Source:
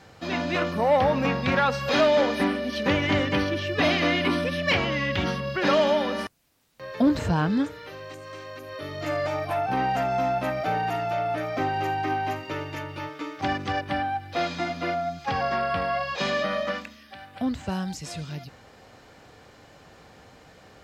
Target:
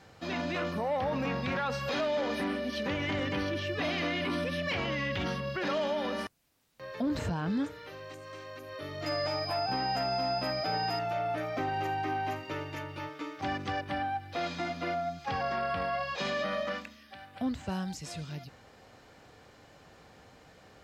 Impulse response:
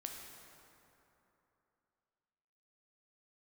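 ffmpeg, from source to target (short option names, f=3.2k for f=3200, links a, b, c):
-filter_complex "[0:a]alimiter=limit=-19.5dB:level=0:latency=1:release=13,asettb=1/sr,asplit=3[a][b][c];[a]atrim=end=9.064[d];[b]atrim=start=9.06:end=10.99,asetpts=PTS-STARTPTS,afade=t=in:d=0.004:c=qsin,afade=t=out:st=1.926:d=0.004:c=qsin,aeval=exprs='val(0)+0.0251*sin(2*PI*5000*n/s)':c=same[e];[c]atrim=start=10.986[f];[d][e]acrossfade=d=0.004:c1=hsin:c2=qsin[g];[g][f]acrossfade=d=0.004:c1=qsin:c2=hsin,volume=-5dB"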